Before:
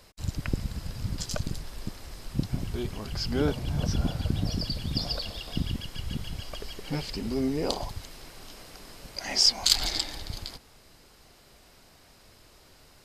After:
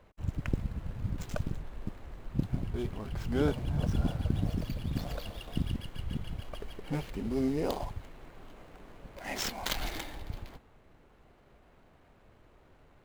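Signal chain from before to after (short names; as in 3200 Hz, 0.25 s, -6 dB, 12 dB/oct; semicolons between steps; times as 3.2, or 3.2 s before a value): median filter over 9 samples; mismatched tape noise reduction decoder only; gain -2 dB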